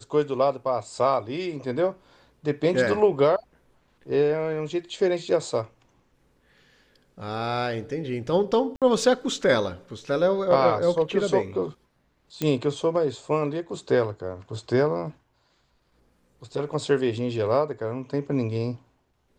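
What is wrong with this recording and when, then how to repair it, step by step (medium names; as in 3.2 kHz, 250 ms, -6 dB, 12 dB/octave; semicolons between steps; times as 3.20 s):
8.76–8.82 s: dropout 57 ms
12.42 s: pop -12 dBFS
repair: de-click; interpolate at 8.76 s, 57 ms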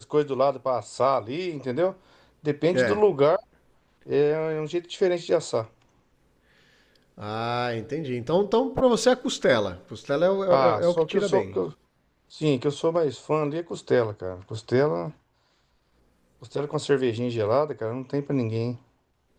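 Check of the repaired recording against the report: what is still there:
nothing left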